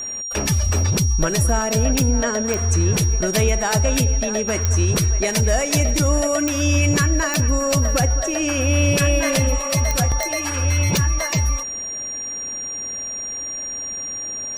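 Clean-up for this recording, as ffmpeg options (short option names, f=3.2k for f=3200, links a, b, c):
-af "adeclick=t=4,bandreject=f=5.7k:w=30"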